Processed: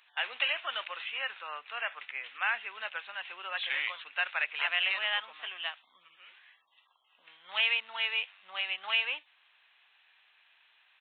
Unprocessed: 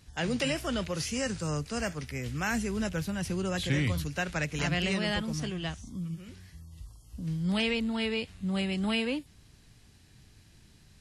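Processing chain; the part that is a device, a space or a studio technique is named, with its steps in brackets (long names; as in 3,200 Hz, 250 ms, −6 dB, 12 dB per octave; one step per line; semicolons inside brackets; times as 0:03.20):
musical greeting card (downsampling to 8,000 Hz; high-pass filter 860 Hz 24 dB per octave; parametric band 2,600 Hz +4.5 dB 0.28 octaves)
level +2.5 dB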